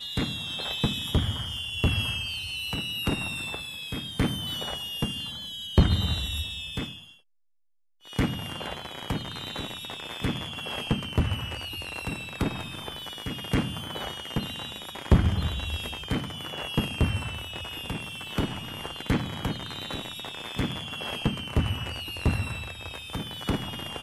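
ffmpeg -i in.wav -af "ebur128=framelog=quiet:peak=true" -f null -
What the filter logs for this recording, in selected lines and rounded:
Integrated loudness:
  I:         -30.2 LUFS
  Threshold: -40.2 LUFS
Loudness range:
  LRA:         4.1 LU
  Threshold: -50.4 LUFS
  LRA low:   -32.6 LUFS
  LRA high:  -28.5 LUFS
True peak:
  Peak:      -10.6 dBFS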